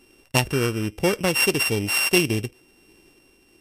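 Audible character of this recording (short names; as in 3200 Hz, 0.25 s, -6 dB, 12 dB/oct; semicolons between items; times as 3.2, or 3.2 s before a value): a buzz of ramps at a fixed pitch in blocks of 16 samples; tremolo triangle 1.1 Hz, depth 35%; MP3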